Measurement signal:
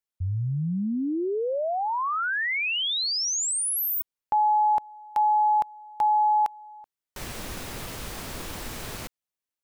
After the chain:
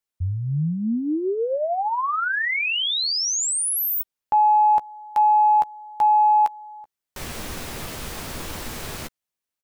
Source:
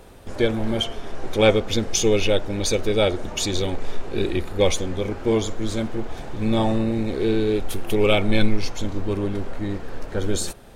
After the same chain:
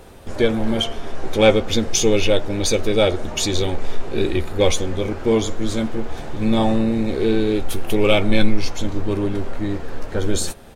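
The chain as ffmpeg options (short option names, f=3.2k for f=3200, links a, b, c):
-filter_complex "[0:a]asplit=2[a][b];[b]asoftclip=type=tanh:threshold=-13.5dB,volume=-8dB[c];[a][c]amix=inputs=2:normalize=0,asplit=2[d][e];[e]adelay=13,volume=-10.5dB[f];[d][f]amix=inputs=2:normalize=0"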